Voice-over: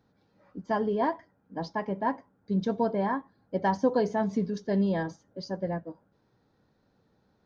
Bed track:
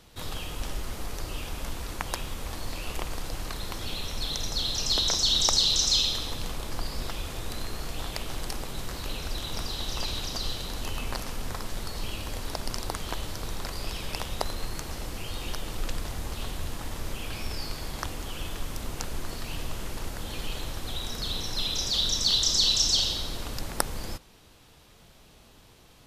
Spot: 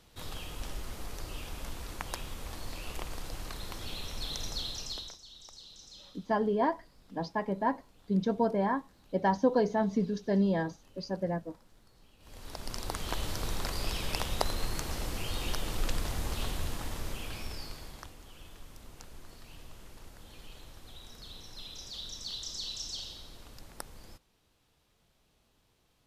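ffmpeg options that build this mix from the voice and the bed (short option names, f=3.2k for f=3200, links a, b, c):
-filter_complex "[0:a]adelay=5600,volume=-1dB[a];[1:a]volume=22.5dB,afade=t=out:st=4.49:d=0.69:silence=0.0749894,afade=t=in:st=12.19:d=1.11:silence=0.0375837,afade=t=out:st=16.42:d=1.72:silence=0.158489[b];[a][b]amix=inputs=2:normalize=0"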